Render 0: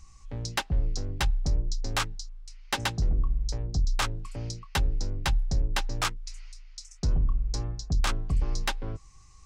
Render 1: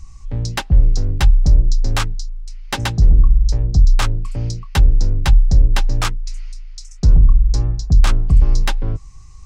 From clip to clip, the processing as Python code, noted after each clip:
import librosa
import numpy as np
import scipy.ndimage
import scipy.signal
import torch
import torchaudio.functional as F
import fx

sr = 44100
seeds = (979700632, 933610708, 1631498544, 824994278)

y = fx.low_shelf(x, sr, hz=210.0, db=10.0)
y = y * 10.0 ** (5.5 / 20.0)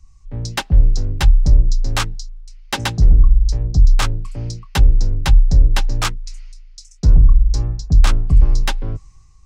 y = fx.band_widen(x, sr, depth_pct=40)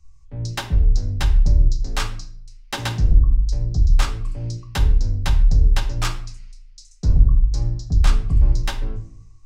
y = fx.room_shoebox(x, sr, seeds[0], volume_m3=67.0, walls='mixed', distance_m=0.42)
y = y * 10.0 ** (-6.0 / 20.0)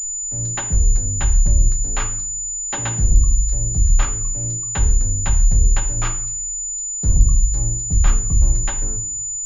y = fx.pwm(x, sr, carrier_hz=7000.0)